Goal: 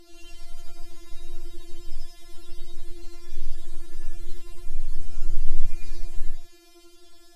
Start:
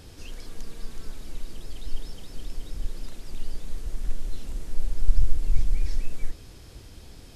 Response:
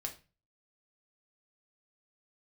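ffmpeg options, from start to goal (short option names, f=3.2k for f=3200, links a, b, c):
-af "afftfilt=real='re':imag='-im':win_size=8192:overlap=0.75,afftfilt=real='re*4*eq(mod(b,16),0)':imag='im*4*eq(mod(b,16),0)':win_size=2048:overlap=0.75,volume=4dB"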